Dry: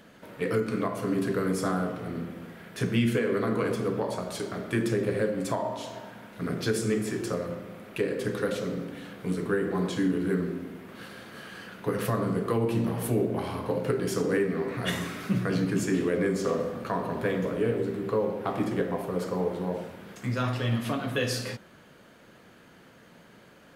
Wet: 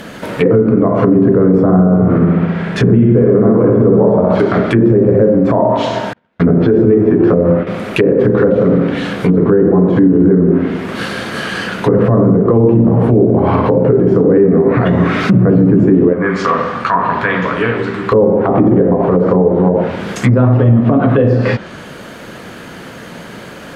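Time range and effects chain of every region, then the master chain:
1.63–4.4 LPF 2100 Hz 6 dB/oct + flutter echo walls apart 11.2 m, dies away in 0.88 s
6.13–7.67 LPF 3900 Hz + gate -41 dBFS, range -40 dB + doubler 12 ms -4.5 dB
16.13–18.12 LPF 2700 Hz 6 dB/oct + resonant low shelf 750 Hz -10.5 dB, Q 1.5
whole clip: treble ducked by the level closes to 650 Hz, closed at -25.5 dBFS; maximiser +24 dB; gain -1 dB

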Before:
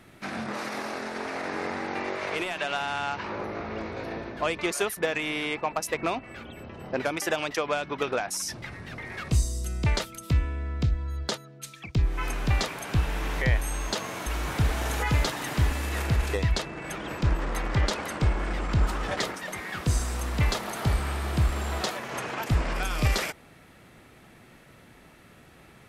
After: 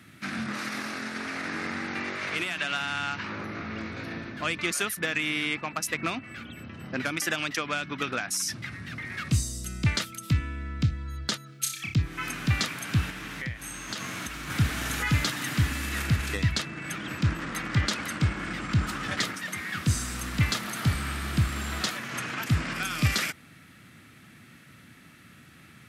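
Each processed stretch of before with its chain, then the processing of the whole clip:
11.46–11.94 high shelf 3200 Hz +11 dB + flutter echo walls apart 5.3 m, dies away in 0.34 s
13.1–14.5 compressor 10:1, threshold -29 dBFS + Doppler distortion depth 0.13 ms
whole clip: HPF 82 Hz 24 dB/oct; band shelf 610 Hz -11 dB; gain +2.5 dB

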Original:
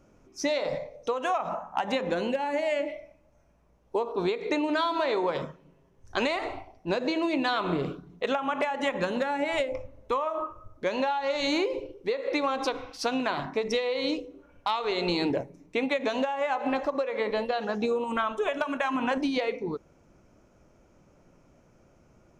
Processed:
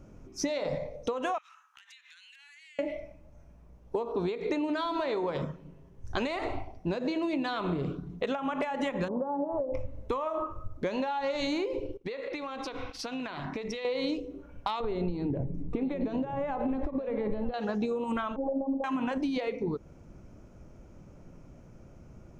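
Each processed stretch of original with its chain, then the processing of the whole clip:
1.38–2.79 Bessel high-pass 2700 Hz, order 8 + compressor 8:1, threshold -52 dBFS
9.08–9.74 elliptic low-pass 1100 Hz, stop band 50 dB + low shelf 170 Hz -7.5 dB
11.97–13.85 expander -41 dBFS + bell 2500 Hz +7 dB 2.4 oct + compressor 8:1, threshold -37 dBFS
14.8–17.54 compressor, threshold -31 dBFS + tilt -4 dB/oct + echo 0.929 s -13.5 dB
18.36–18.84 sample leveller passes 2 + robotiser 270 Hz + rippled Chebyshev low-pass 940 Hz, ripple 3 dB
whole clip: low shelf 270 Hz +11.5 dB; compressor, threshold -29 dBFS; gain +1 dB

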